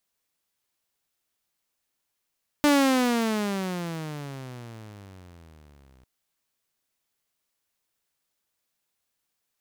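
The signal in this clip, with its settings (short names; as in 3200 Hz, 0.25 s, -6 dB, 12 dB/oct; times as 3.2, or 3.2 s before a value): gliding synth tone saw, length 3.40 s, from 297 Hz, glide -27 st, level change -38.5 dB, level -13.5 dB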